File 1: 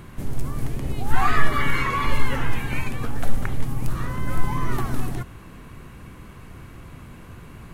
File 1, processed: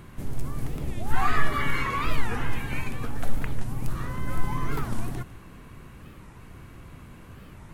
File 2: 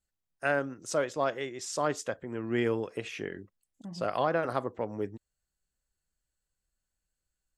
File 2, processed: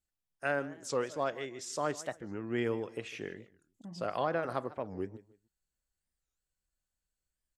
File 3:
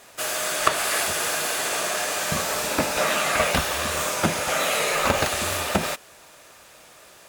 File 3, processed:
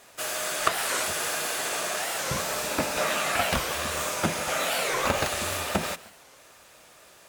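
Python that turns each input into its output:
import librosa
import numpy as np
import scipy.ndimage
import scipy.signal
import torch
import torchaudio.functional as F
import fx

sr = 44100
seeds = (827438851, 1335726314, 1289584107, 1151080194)

y = fx.echo_feedback(x, sr, ms=153, feedback_pct=27, wet_db=-18.5)
y = fx.record_warp(y, sr, rpm=45.0, depth_cents=250.0)
y = F.gain(torch.from_numpy(y), -4.0).numpy()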